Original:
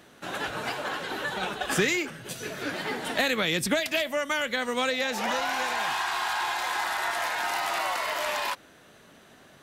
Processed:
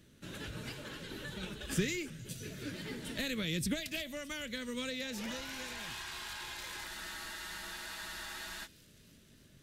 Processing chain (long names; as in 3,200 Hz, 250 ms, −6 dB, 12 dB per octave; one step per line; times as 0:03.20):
Butterworth band-reject 740 Hz, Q 6.8
guitar amp tone stack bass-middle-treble 10-0-1
delay with a high-pass on its return 308 ms, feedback 69%, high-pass 4,000 Hz, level −18 dB
frozen spectrum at 0:06.89, 1.76 s
level +12.5 dB